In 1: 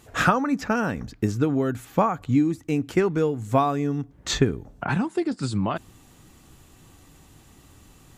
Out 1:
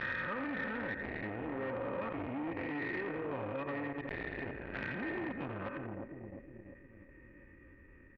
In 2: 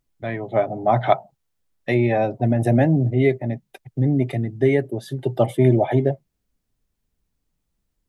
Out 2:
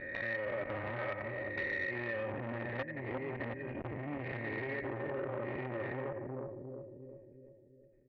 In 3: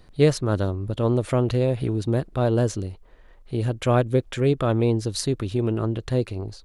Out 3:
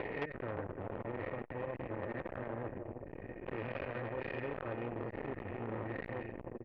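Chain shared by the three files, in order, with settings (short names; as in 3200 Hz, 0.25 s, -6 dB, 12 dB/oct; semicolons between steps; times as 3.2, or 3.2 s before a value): spectral swells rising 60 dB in 1.45 s; vocal tract filter e; fixed phaser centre 1600 Hz, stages 4; level quantiser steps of 15 dB; dynamic EQ 320 Hz, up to -5 dB, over -59 dBFS, Q 1.5; comb 3.2 ms, depth 47%; on a send: split-band echo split 610 Hz, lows 0.352 s, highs 86 ms, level -8 dB; on the sum: compressor 8:1, threshold -48 dBFS; core saturation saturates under 1300 Hz; gain +16 dB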